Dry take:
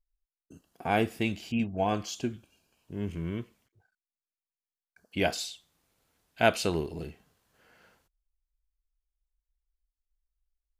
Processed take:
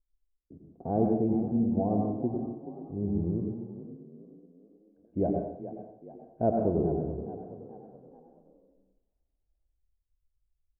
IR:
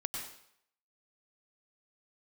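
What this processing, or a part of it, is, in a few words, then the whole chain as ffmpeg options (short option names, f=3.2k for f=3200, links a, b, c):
next room: -filter_complex "[0:a]lowpass=f=600:w=0.5412,lowpass=f=600:w=1.3066[a];[1:a]atrim=start_sample=2205[b];[a][b]afir=irnorm=-1:irlink=0,asplit=5[c][d][e][f][g];[d]adelay=426,afreqshift=30,volume=-13dB[h];[e]adelay=852,afreqshift=60,volume=-20.1dB[i];[f]adelay=1278,afreqshift=90,volume=-27.3dB[j];[g]adelay=1704,afreqshift=120,volume=-34.4dB[k];[c][h][i][j][k]amix=inputs=5:normalize=0,volume=2.5dB"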